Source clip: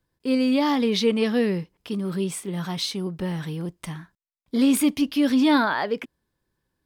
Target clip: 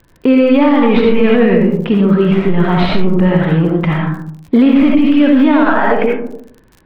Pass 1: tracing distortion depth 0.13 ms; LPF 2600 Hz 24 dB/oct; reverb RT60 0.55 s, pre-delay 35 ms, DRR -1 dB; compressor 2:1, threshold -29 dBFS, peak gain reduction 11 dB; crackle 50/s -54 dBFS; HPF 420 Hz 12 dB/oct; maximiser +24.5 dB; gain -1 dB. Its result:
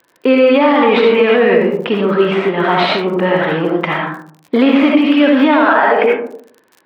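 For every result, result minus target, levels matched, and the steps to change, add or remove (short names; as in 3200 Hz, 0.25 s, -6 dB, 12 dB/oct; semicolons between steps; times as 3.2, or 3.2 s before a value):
compressor: peak gain reduction -5 dB; 500 Hz band +3.0 dB
change: compressor 2:1, threshold -39 dBFS, peak gain reduction 16 dB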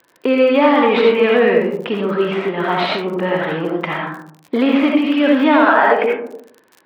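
500 Hz band +3.0 dB
remove: HPF 420 Hz 12 dB/oct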